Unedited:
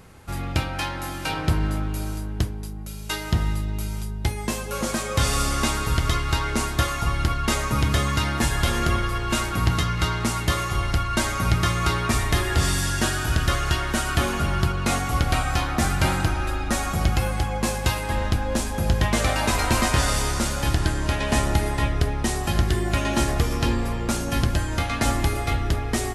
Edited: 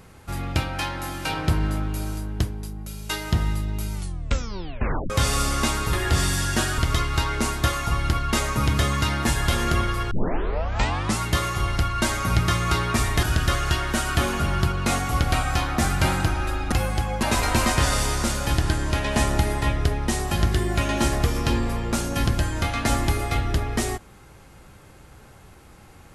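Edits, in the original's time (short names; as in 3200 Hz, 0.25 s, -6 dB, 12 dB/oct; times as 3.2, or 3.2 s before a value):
3.93 tape stop 1.17 s
9.26 tape start 1.08 s
12.38–13.23 move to 5.93
16.72–17.14 cut
17.65–19.39 cut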